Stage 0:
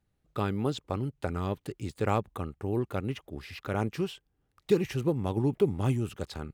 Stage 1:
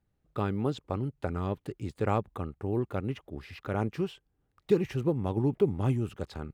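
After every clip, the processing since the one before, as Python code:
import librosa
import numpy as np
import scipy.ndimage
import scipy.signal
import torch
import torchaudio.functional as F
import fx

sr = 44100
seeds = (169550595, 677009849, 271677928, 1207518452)

y = fx.high_shelf(x, sr, hz=2900.0, db=-8.5)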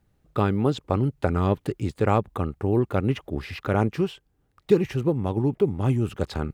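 y = fx.rider(x, sr, range_db=4, speed_s=0.5)
y = y * librosa.db_to_amplitude(7.0)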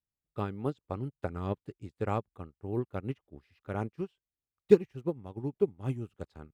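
y = fx.upward_expand(x, sr, threshold_db=-34.0, expansion=2.5)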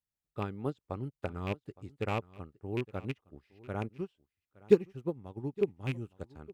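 y = fx.rattle_buzz(x, sr, strikes_db=-30.0, level_db=-25.0)
y = y + 10.0 ** (-21.0 / 20.0) * np.pad(y, (int(865 * sr / 1000.0), 0))[:len(y)]
y = y * librosa.db_to_amplitude(-2.0)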